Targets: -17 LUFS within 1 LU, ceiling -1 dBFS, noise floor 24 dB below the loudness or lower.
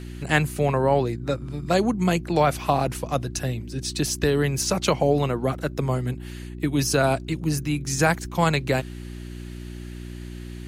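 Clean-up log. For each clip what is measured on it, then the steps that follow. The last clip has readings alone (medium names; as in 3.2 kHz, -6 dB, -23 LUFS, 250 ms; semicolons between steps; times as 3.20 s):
dropouts 1; longest dropout 3.9 ms; hum 60 Hz; highest harmonic 360 Hz; hum level -33 dBFS; loudness -24.0 LUFS; peak level -5.5 dBFS; loudness target -17.0 LUFS
-> interpolate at 5.54 s, 3.9 ms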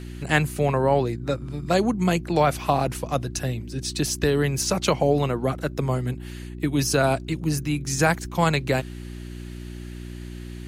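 dropouts 0; hum 60 Hz; highest harmonic 360 Hz; hum level -33 dBFS
-> de-hum 60 Hz, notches 6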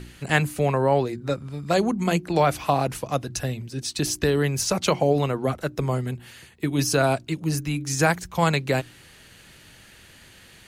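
hum not found; loudness -24.0 LUFS; peak level -5.5 dBFS; loudness target -17.0 LUFS
-> trim +7 dB; peak limiter -1 dBFS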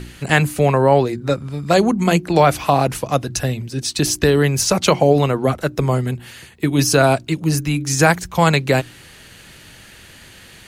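loudness -17.5 LUFS; peak level -1.0 dBFS; noise floor -43 dBFS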